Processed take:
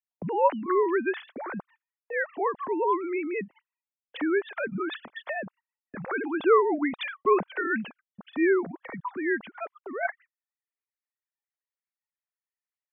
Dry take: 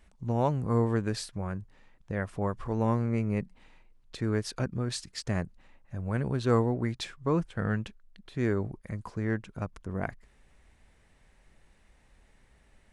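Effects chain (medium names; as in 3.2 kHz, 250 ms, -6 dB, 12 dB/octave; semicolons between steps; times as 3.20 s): formants replaced by sine waves; gate -52 dBFS, range -39 dB; bass shelf 420 Hz -9.5 dB; trim +7 dB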